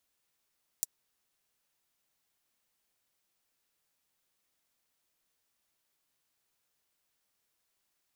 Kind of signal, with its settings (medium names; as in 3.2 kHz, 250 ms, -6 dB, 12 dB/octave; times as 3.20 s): closed hi-hat, high-pass 6.8 kHz, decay 0.03 s